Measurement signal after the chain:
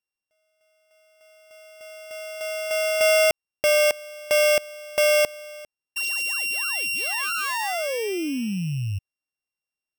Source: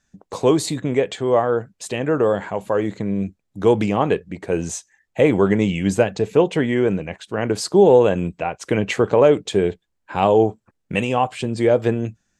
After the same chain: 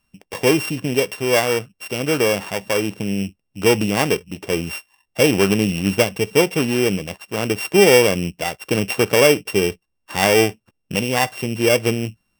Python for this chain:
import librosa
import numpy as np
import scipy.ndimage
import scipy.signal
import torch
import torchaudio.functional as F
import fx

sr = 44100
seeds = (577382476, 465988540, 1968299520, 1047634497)

y = np.r_[np.sort(x[:len(x) // 16 * 16].reshape(-1, 16), axis=1).ravel(), x[len(x) // 16 * 16:]]